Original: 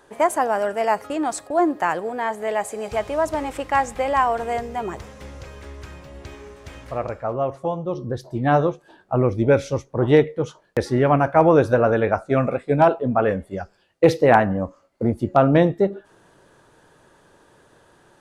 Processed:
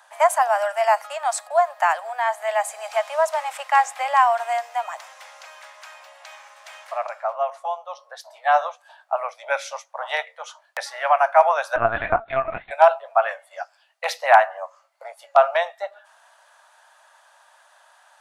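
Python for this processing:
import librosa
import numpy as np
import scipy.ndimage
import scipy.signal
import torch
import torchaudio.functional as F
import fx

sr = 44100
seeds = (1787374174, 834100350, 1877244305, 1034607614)

y = scipy.signal.sosfilt(scipy.signal.butter(12, 620.0, 'highpass', fs=sr, output='sos'), x)
y = fx.lpc_vocoder(y, sr, seeds[0], excitation='pitch_kept', order=10, at=(11.76, 12.71))
y = F.gain(torch.from_numpy(y), 3.0).numpy()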